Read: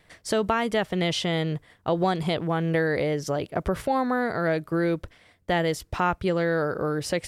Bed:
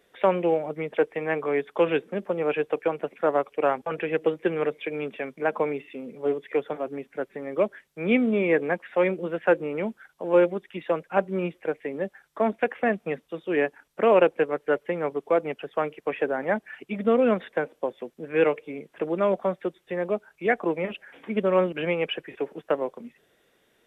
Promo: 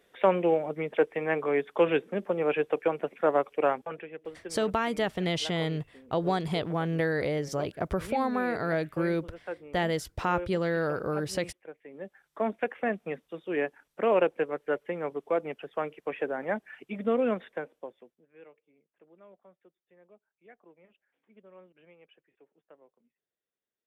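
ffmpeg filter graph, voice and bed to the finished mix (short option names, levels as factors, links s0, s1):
-filter_complex "[0:a]adelay=4250,volume=0.631[s0];[1:a]volume=3.16,afade=t=out:st=3.61:d=0.48:silence=0.16788,afade=t=in:st=11.85:d=0.55:silence=0.266073,afade=t=out:st=17.22:d=1.04:silence=0.0501187[s1];[s0][s1]amix=inputs=2:normalize=0"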